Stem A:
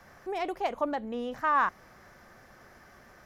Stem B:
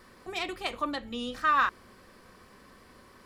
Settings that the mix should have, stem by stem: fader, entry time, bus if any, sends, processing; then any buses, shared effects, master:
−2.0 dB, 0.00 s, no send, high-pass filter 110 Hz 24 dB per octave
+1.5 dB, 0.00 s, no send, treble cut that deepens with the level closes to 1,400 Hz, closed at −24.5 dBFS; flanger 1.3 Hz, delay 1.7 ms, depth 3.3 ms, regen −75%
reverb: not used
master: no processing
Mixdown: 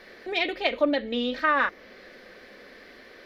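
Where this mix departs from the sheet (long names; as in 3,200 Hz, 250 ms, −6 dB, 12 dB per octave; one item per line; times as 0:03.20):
stem B: polarity flipped
master: extra graphic EQ with 10 bands 125 Hz −11 dB, 250 Hz +5 dB, 500 Hz +11 dB, 1,000 Hz −8 dB, 2,000 Hz +10 dB, 4,000 Hz +12 dB, 8,000 Hz −10 dB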